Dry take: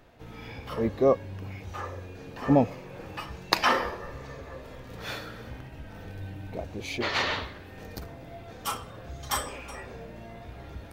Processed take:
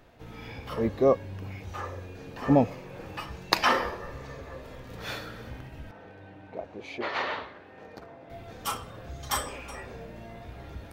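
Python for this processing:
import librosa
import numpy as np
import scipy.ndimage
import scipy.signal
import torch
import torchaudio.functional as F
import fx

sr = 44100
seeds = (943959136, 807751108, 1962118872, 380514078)

y = fx.bandpass_q(x, sr, hz=800.0, q=0.58, at=(5.91, 8.3))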